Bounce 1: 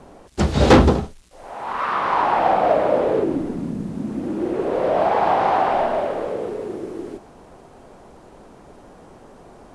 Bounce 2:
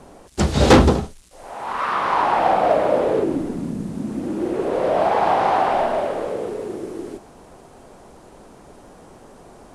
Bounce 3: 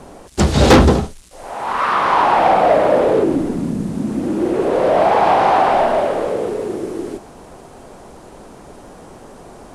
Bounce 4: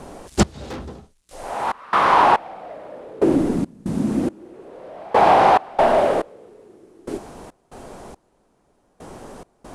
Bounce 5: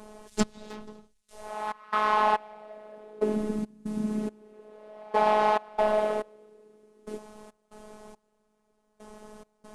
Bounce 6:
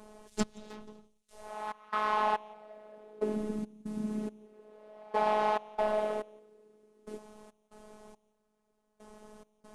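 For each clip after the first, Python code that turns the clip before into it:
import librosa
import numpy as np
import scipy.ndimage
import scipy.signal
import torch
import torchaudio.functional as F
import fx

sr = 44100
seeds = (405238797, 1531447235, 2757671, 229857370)

y1 = fx.high_shelf(x, sr, hz=6300.0, db=9.0)
y2 = 10.0 ** (-10.0 / 20.0) * np.tanh(y1 / 10.0 ** (-10.0 / 20.0))
y2 = F.gain(torch.from_numpy(y2), 6.0).numpy()
y3 = fx.step_gate(y2, sr, bpm=70, pattern='xx....xx.', floor_db=-24.0, edge_ms=4.5)
y4 = fx.robotise(y3, sr, hz=213.0)
y4 = F.gain(torch.from_numpy(y4), -7.0).numpy()
y5 = y4 + 10.0 ** (-24.0 / 20.0) * np.pad(y4, (int(174 * sr / 1000.0), 0))[:len(y4)]
y5 = F.gain(torch.from_numpy(y5), -5.5).numpy()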